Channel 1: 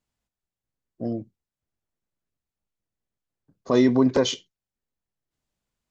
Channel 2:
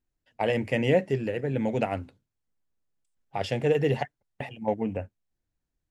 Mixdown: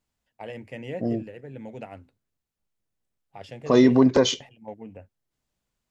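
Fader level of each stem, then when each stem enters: +2.0 dB, -12.0 dB; 0.00 s, 0.00 s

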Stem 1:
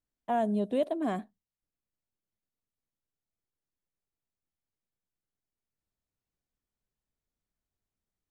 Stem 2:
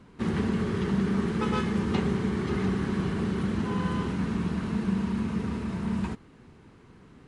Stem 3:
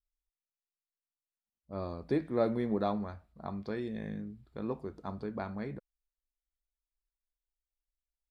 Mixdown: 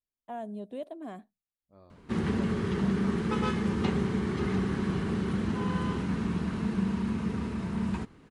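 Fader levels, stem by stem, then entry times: -10.0 dB, -1.5 dB, -18.5 dB; 0.00 s, 1.90 s, 0.00 s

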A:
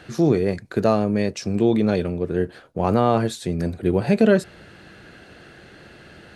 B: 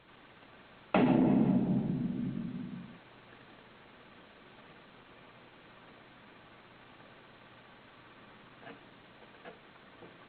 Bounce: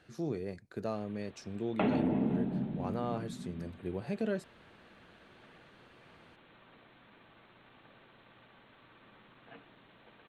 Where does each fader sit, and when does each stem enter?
-18.0 dB, -4.0 dB; 0.00 s, 0.85 s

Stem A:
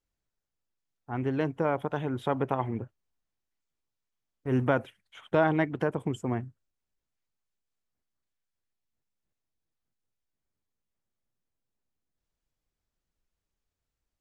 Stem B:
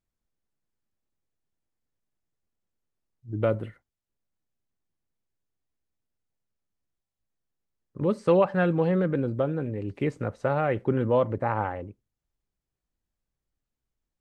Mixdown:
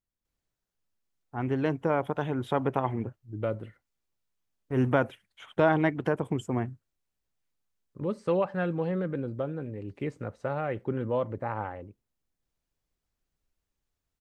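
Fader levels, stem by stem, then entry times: +1.0 dB, -6.0 dB; 0.25 s, 0.00 s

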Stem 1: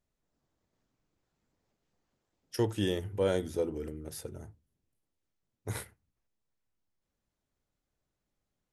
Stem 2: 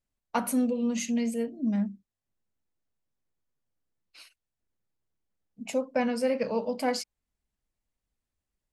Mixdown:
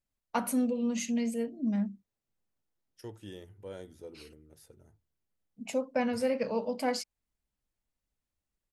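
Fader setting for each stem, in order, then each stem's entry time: -15.0 dB, -2.5 dB; 0.45 s, 0.00 s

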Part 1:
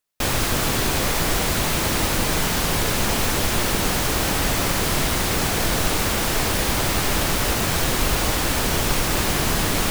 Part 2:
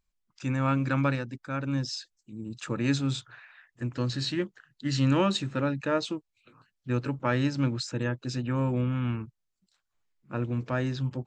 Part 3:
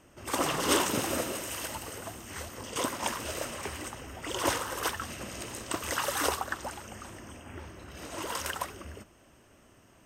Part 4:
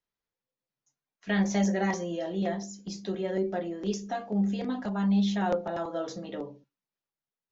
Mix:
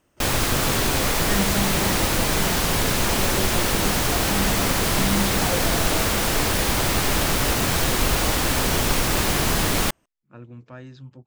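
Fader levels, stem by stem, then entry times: 0.0 dB, -11.5 dB, -8.0 dB, -1.5 dB; 0.00 s, 0.00 s, 0.00 s, 0.00 s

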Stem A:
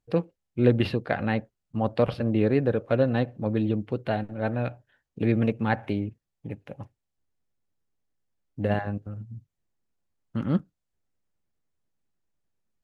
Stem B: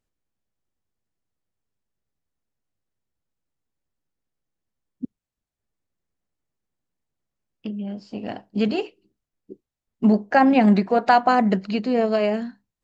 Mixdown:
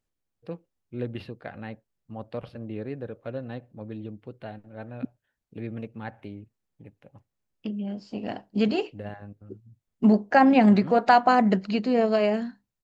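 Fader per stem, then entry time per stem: -12.0 dB, -1.5 dB; 0.35 s, 0.00 s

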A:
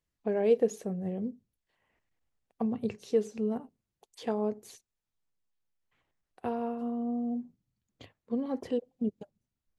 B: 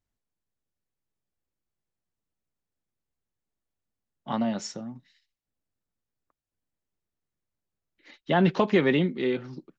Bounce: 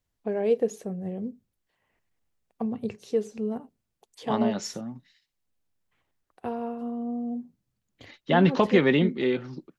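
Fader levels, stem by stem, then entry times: +1.0 dB, +1.5 dB; 0.00 s, 0.00 s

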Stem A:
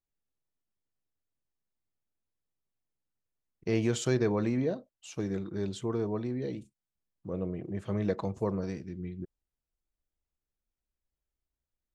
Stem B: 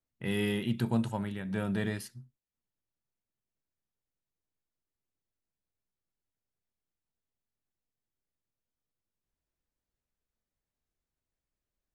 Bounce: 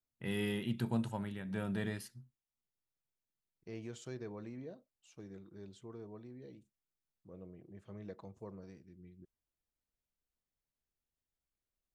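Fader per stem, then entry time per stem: -17.5 dB, -5.5 dB; 0.00 s, 0.00 s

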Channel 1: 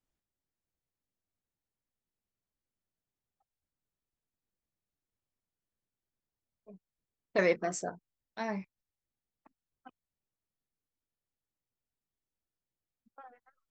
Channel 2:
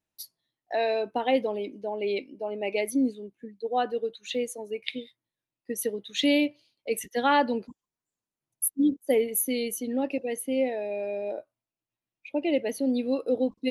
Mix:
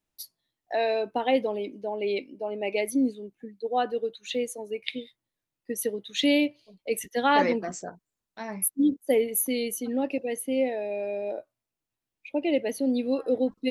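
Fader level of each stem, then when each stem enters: -0.5 dB, +0.5 dB; 0.00 s, 0.00 s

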